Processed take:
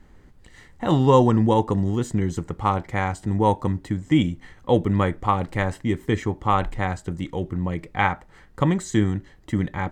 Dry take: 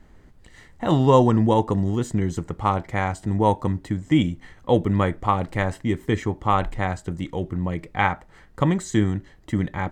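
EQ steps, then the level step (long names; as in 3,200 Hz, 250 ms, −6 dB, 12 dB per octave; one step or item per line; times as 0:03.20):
notch filter 650 Hz, Q 14
0.0 dB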